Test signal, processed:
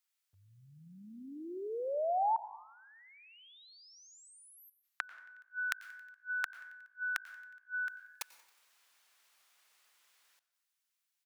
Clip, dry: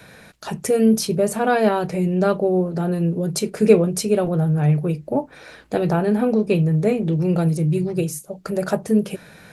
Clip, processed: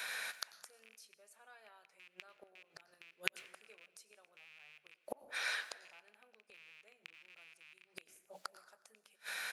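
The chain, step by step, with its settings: rattle on loud lows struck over -20 dBFS, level -13 dBFS; high-pass 1.3 kHz 12 dB/octave; in parallel at -1.5 dB: compression 4:1, threshold -37 dBFS; on the sum: inverted gate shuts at -27 dBFS, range -36 dB; on a send: frequency-shifting echo 91 ms, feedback 60%, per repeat +53 Hz, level -23 dB; on the sum: plate-style reverb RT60 0.78 s, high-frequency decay 0.6×, pre-delay 95 ms, DRR 16 dB; trim +1.5 dB

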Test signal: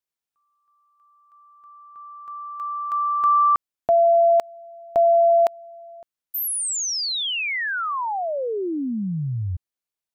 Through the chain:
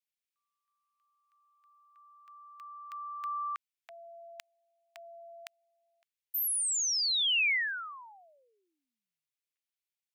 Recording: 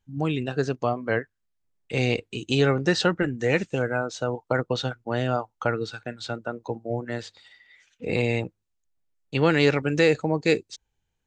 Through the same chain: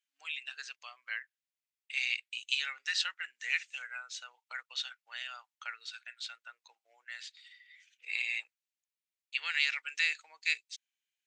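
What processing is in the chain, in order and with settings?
ladder high-pass 1.8 kHz, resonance 35%; trim +2 dB

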